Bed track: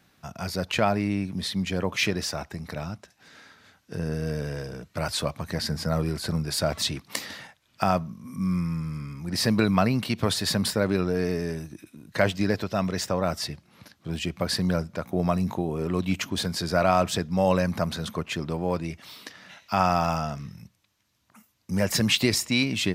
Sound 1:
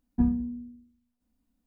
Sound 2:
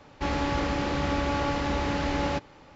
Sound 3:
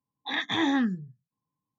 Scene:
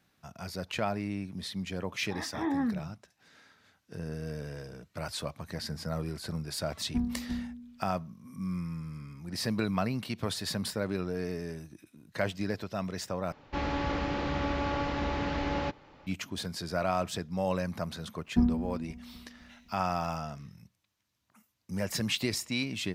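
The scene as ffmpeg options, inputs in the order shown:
-filter_complex "[1:a]asplit=2[s0][s1];[0:a]volume=0.376[s2];[3:a]lowpass=1200[s3];[s0]aecho=1:1:348:0.501[s4];[2:a]lowpass=5000[s5];[s1]asplit=2[s6][s7];[s7]adelay=256,lowpass=f=2000:p=1,volume=0.211,asplit=2[s8][s9];[s9]adelay=256,lowpass=f=2000:p=1,volume=0.53,asplit=2[s10][s11];[s11]adelay=256,lowpass=f=2000:p=1,volume=0.53,asplit=2[s12][s13];[s13]adelay=256,lowpass=f=2000:p=1,volume=0.53,asplit=2[s14][s15];[s15]adelay=256,lowpass=f=2000:p=1,volume=0.53[s16];[s6][s8][s10][s12][s14][s16]amix=inputs=6:normalize=0[s17];[s2]asplit=2[s18][s19];[s18]atrim=end=13.324[s20];[s5]atrim=end=2.75,asetpts=PTS-STARTPTS,volume=0.631[s21];[s19]atrim=start=16.066[s22];[s3]atrim=end=1.78,asetpts=PTS-STARTPTS,volume=0.596,afade=t=in:d=0.004:c=hsin,afade=t=out:st=1.776:d=0.004:c=hsin,adelay=1840[s23];[s4]atrim=end=1.66,asetpts=PTS-STARTPTS,volume=0.473,afade=t=in:d=0.004:c=hsin,afade=t=out:st=1.656:d=0.004:c=hsin,adelay=6760[s24];[s17]atrim=end=1.66,asetpts=PTS-STARTPTS,volume=0.944,afade=t=in:d=0.004:c=hsin,afade=t=out:st=1.656:d=0.004:c=hsin,adelay=18180[s25];[s20][s21]acrossfade=d=0.004:c1=hsin:c2=hsin[s26];[s26][s22]acrossfade=d=0.004:c1=hsin:c2=hsin[s27];[s27][s23][s24][s25]amix=inputs=4:normalize=0"

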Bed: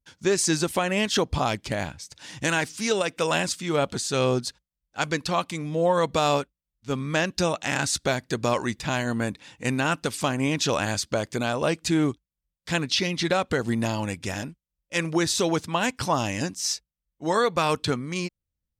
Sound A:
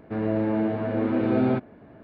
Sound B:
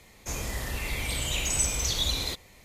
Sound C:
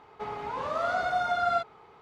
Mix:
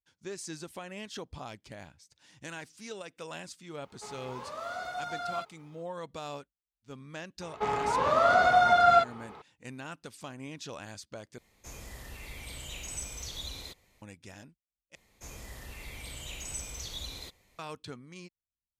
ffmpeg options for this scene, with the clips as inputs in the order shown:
-filter_complex "[3:a]asplit=2[s0][s1];[2:a]asplit=2[s2][s3];[0:a]volume=0.126[s4];[s0]aemphasis=mode=production:type=75kf[s5];[s1]acontrast=69[s6];[s4]asplit=3[s7][s8][s9];[s7]atrim=end=11.384[s10];[s2]atrim=end=2.64,asetpts=PTS-STARTPTS,volume=0.237[s11];[s8]atrim=start=14.016:end=14.954[s12];[s3]atrim=end=2.64,asetpts=PTS-STARTPTS,volume=0.237[s13];[s9]atrim=start=17.586[s14];[s5]atrim=end=2.01,asetpts=PTS-STARTPTS,volume=0.299,afade=t=in:d=0.004:c=hsin,afade=t=out:st=2.006:d=0.004:c=hsin,adelay=3820[s15];[s6]atrim=end=2.01,asetpts=PTS-STARTPTS,volume=0.944,afade=t=in:d=0.004:c=hsin,afade=t=out:st=2.006:d=0.004:c=hsin,adelay=7410[s16];[s10][s11]acrossfade=d=0.004:c1=hsin:c2=hsin[s17];[s17][s12]acrossfade=d=0.004:c1=hsin:c2=hsin[s18];[s18][s13]acrossfade=d=0.004:c1=hsin:c2=hsin[s19];[s19][s14]acrossfade=d=0.004:c1=hsin:c2=hsin[s20];[s20][s15][s16]amix=inputs=3:normalize=0"

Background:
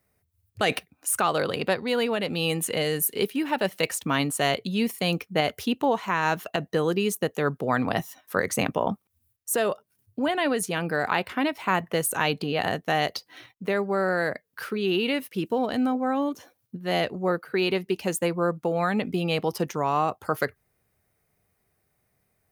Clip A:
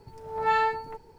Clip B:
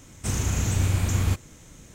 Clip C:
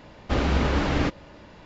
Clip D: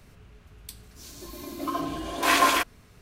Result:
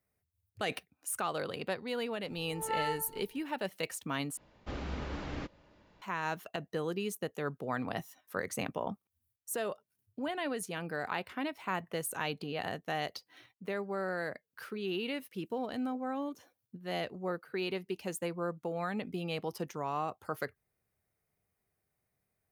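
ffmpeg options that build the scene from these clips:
-filter_complex "[0:a]volume=0.282,asplit=2[s0][s1];[s0]atrim=end=4.374[s2];[3:a]atrim=end=1.65,asetpts=PTS-STARTPTS,volume=0.158[s3];[s1]atrim=start=6.016[s4];[1:a]atrim=end=1.18,asetpts=PTS-STARTPTS,volume=0.299,afade=t=in:d=0.004:c=hsin,afade=t=out:st=1.176:d=0.004:c=hsin,adelay=2240[s5];[s2][s3]acrossfade=d=0.004:c1=hsin:c2=hsin[s6];[s6][s4]acrossfade=d=0.004:c1=hsin:c2=hsin[s7];[s7][s5]amix=inputs=2:normalize=0"

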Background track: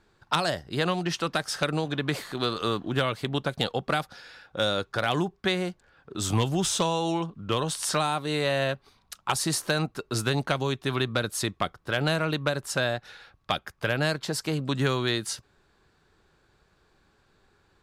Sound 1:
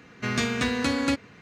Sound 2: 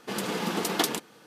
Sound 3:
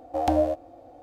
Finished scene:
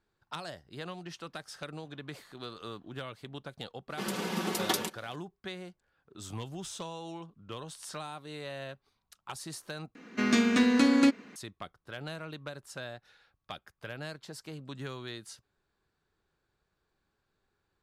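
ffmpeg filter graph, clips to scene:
-filter_complex "[0:a]volume=0.178[s0];[2:a]aecho=1:1:5.3:0.55[s1];[1:a]lowshelf=f=160:t=q:w=3:g=-12.5[s2];[s0]asplit=2[s3][s4];[s3]atrim=end=9.954[s5];[s2]atrim=end=1.41,asetpts=PTS-STARTPTS,volume=0.75[s6];[s4]atrim=start=11.356[s7];[s1]atrim=end=1.26,asetpts=PTS-STARTPTS,volume=0.562,afade=t=in:d=0.004:c=hsin,afade=t=out:st=1.256:d=0.004:c=hsin,adelay=3900[s8];[s5][s6]acrossfade=d=0.004:c1=hsin:c2=hsin[s9];[s9][s7]acrossfade=d=0.004:c1=hsin:c2=hsin[s10];[s10][s8]amix=inputs=2:normalize=0"

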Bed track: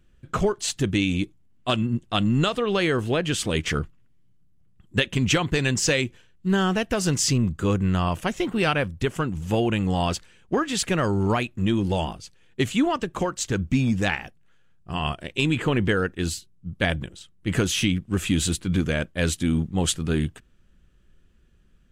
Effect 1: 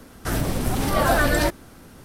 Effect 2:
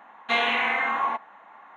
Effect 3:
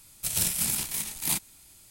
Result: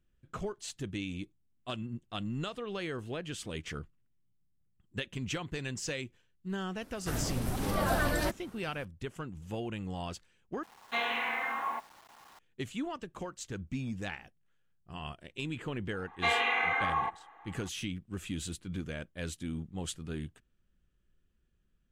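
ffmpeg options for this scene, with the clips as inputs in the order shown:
-filter_complex "[2:a]asplit=2[s0][s1];[0:a]volume=0.178[s2];[s0]acrusher=bits=7:mix=0:aa=0.000001[s3];[s1]aecho=1:1:2.5:0.8[s4];[s2]asplit=2[s5][s6];[s5]atrim=end=10.634[s7];[s3]atrim=end=1.76,asetpts=PTS-STARTPTS,volume=0.355[s8];[s6]atrim=start=12.386[s9];[1:a]atrim=end=2.04,asetpts=PTS-STARTPTS,volume=0.299,afade=t=in:d=0.004:c=hsin,afade=t=out:st=2.036:d=0.004:c=hsin,adelay=6810[s10];[s4]atrim=end=1.76,asetpts=PTS-STARTPTS,volume=0.422,afade=t=in:d=0.004:c=hsin,afade=t=out:st=1.756:d=0.004:c=hsin,adelay=15930[s11];[s7][s8]acrossfade=d=0.004:c1=hsin:c2=hsin[s12];[s12][s9]acrossfade=d=0.004:c1=hsin:c2=hsin[s13];[s13][s10][s11]amix=inputs=3:normalize=0"

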